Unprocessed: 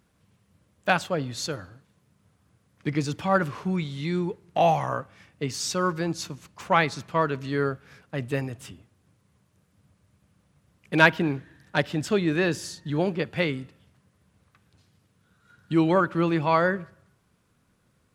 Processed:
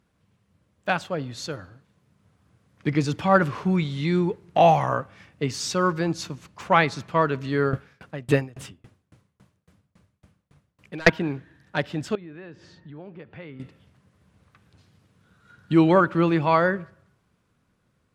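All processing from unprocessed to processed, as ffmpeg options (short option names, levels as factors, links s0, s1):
-filter_complex "[0:a]asettb=1/sr,asplit=3[s0][s1][s2];[s0]atrim=end=7.734[s3];[s1]atrim=start=7.73:end=11.1,asetpts=PTS-STARTPTS,afade=t=in:d=0.004:c=qsin,afade=t=out:st=3.366:d=0.004:c=qsin,aeval=exprs='0.891*sin(PI/2*2.82*val(0)/0.891)':c=same,aeval=exprs='val(0)*pow(10,-33*if(lt(mod(3.6*n/s,1),2*abs(3.6)/1000),1-mod(3.6*n/s,1)/(2*abs(3.6)/1000),(mod(3.6*n/s,1)-2*abs(3.6)/1000)/(1-2*abs(3.6)/1000))/20)':c=same[s4];[s2]atrim=start=11.096[s5];[s3][s4]acrossfade=d=0.004:c1=hsin:c2=qsin[s6];[s6][s5]acrossfade=d=0.004:c1=qsin:c2=hsin,asettb=1/sr,asplit=3[s7][s8][s9];[s7]atrim=end=12.154[s10];[s8]atrim=start=12.15:end=13.6,asetpts=PTS-STARTPTS,afade=t=in:d=0.004:c=qsin,afade=t=out:st=1.446:d=0.004:c=qsin,lowpass=2600,acompressor=threshold=0.00562:ratio=2.5:attack=3.2:release=140:knee=1:detection=peak[s11];[s9]atrim=start=13.596[s12];[s10][s11]acrossfade=d=0.004:c1=hsin:c2=qsin[s13];[s13][s12]acrossfade=d=0.004:c1=qsin:c2=hsin,highshelf=f=7100:g=-8.5,dynaudnorm=f=480:g=9:m=3.76,volume=0.794"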